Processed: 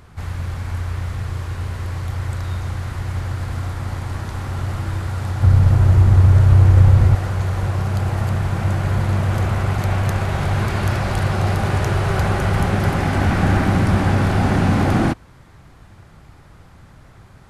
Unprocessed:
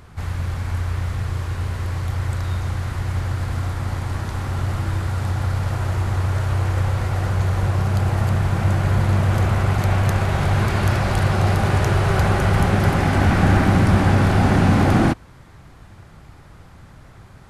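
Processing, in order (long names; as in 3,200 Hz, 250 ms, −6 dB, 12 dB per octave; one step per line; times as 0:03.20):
0:05.42–0:07.15: low-shelf EQ 350 Hz +12 dB
level −1 dB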